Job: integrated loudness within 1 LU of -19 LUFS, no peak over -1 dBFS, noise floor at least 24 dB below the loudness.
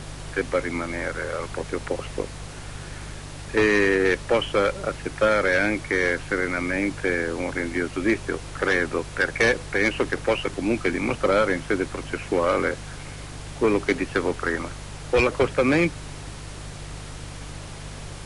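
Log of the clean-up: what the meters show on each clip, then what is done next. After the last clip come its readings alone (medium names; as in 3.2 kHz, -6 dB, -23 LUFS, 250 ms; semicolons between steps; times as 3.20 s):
hum 50 Hz; highest harmonic 150 Hz; hum level -37 dBFS; noise floor -38 dBFS; noise floor target -48 dBFS; loudness -24.0 LUFS; peak level -10.5 dBFS; loudness target -19.0 LUFS
-> de-hum 50 Hz, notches 3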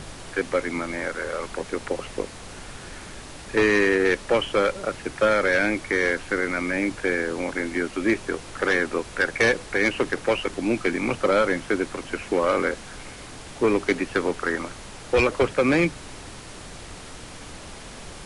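hum not found; noise floor -41 dBFS; noise floor target -48 dBFS
-> noise print and reduce 7 dB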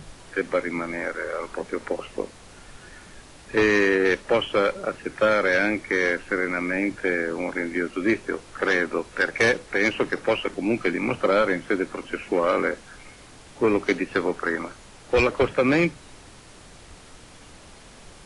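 noise floor -47 dBFS; noise floor target -48 dBFS
-> noise print and reduce 6 dB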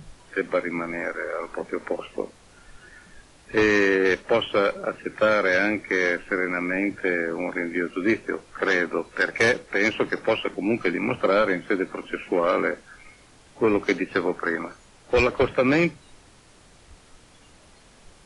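noise floor -53 dBFS; loudness -24.0 LUFS; peak level -10.5 dBFS; loudness target -19.0 LUFS
-> trim +5 dB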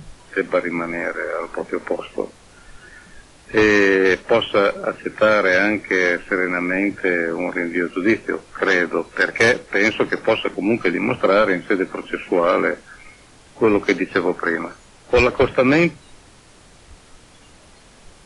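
loudness -19.0 LUFS; peak level -5.5 dBFS; noise floor -48 dBFS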